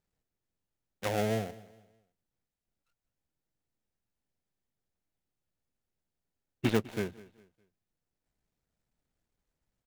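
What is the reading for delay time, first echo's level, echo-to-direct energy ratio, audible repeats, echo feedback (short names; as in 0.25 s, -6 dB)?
0.204 s, -20.0 dB, -19.5 dB, 2, 34%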